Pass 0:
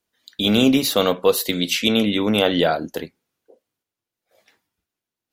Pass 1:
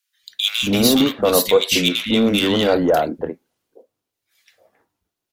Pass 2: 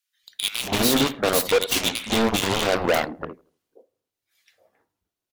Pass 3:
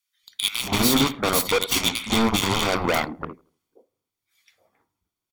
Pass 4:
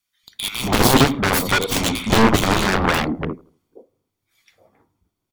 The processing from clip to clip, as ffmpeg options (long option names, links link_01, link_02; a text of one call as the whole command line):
ffmpeg -i in.wav -filter_complex "[0:a]asplit=2[link_01][link_02];[link_02]aeval=exprs='0.158*(abs(mod(val(0)/0.158+3,4)-2)-1)':channel_layout=same,volume=-9dB[link_03];[link_01][link_03]amix=inputs=2:normalize=0,acrossover=split=190|1500[link_04][link_05][link_06];[link_04]adelay=230[link_07];[link_05]adelay=270[link_08];[link_07][link_08][link_06]amix=inputs=3:normalize=0,volume=2dB" out.wav
ffmpeg -i in.wav -filter_complex "[0:a]aeval=exprs='0.794*(cos(1*acos(clip(val(0)/0.794,-1,1)))-cos(1*PI/2))+0.158*(cos(7*acos(clip(val(0)/0.794,-1,1)))-cos(7*PI/2))':channel_layout=same,asplit=2[link_01][link_02];[link_02]adelay=81,lowpass=frequency=1100:poles=1,volume=-21dB,asplit=2[link_03][link_04];[link_04]adelay=81,lowpass=frequency=1100:poles=1,volume=0.41,asplit=2[link_05][link_06];[link_06]adelay=81,lowpass=frequency=1100:poles=1,volume=0.41[link_07];[link_01][link_03][link_05][link_07]amix=inputs=4:normalize=0,asoftclip=type=hard:threshold=-16dB,volume=3dB" out.wav
ffmpeg -i in.wav -af "aecho=1:1:0.9:0.43" out.wav
ffmpeg -i in.wav -af "tiltshelf=frequency=800:gain=6,aeval=exprs='0.562*(cos(1*acos(clip(val(0)/0.562,-1,1)))-cos(1*PI/2))+0.282*(cos(7*acos(clip(val(0)/0.562,-1,1)))-cos(7*PI/2))':channel_layout=same" out.wav